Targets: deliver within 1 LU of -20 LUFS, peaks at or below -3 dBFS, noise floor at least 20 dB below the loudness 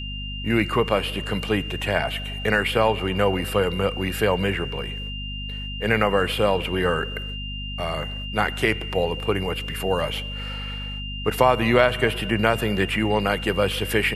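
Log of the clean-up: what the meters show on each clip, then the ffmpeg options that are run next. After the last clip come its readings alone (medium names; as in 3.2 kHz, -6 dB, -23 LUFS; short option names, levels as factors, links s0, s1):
hum 50 Hz; highest harmonic 250 Hz; hum level -30 dBFS; steady tone 2.8 kHz; tone level -33 dBFS; loudness -23.5 LUFS; peak level -1.5 dBFS; loudness target -20.0 LUFS
-> -af "bandreject=f=50:t=h:w=4,bandreject=f=100:t=h:w=4,bandreject=f=150:t=h:w=4,bandreject=f=200:t=h:w=4,bandreject=f=250:t=h:w=4"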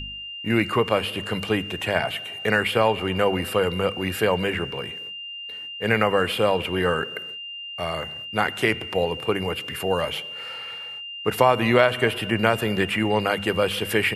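hum not found; steady tone 2.8 kHz; tone level -33 dBFS
-> -af "bandreject=f=2800:w=30"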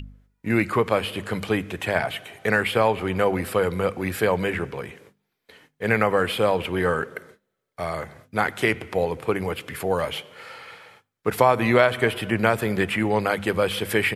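steady tone not found; loudness -23.5 LUFS; peak level -2.0 dBFS; loudness target -20.0 LUFS
-> -af "volume=1.5,alimiter=limit=0.708:level=0:latency=1"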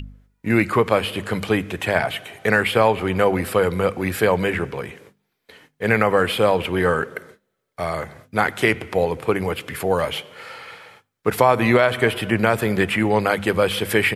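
loudness -20.5 LUFS; peak level -3.0 dBFS; noise floor -73 dBFS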